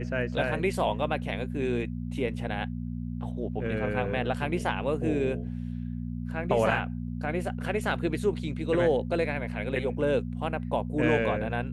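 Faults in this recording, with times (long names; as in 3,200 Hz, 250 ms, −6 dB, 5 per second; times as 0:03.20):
mains hum 60 Hz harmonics 4 −34 dBFS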